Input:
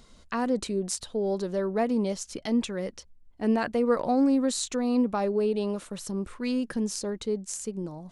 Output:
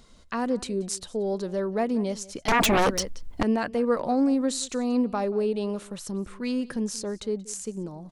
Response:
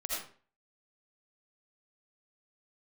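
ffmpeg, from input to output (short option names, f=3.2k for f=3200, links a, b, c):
-filter_complex "[0:a]asplit=2[a][b];[b]adelay=180.8,volume=-20dB,highshelf=f=4k:g=-4.07[c];[a][c]amix=inputs=2:normalize=0,asettb=1/sr,asplit=3[d][e][f];[d]atrim=end=2.484[g];[e]atrim=start=2.48:end=3.43,asetpts=PTS-STARTPTS,afade=t=in:d=0.004:c=qsin,afade=t=out:st=0.946:d=0.004:c=qsin,aeval=exprs='0.141*sin(PI/2*5.62*val(0)/0.141)':c=same[h];[f]atrim=start=3.426[i];[g][h]acrossfade=d=0.004:c1=hsin:c2=qsin[j];[j][i]acrossfade=d=0.004:c1=qsin:c2=hsin"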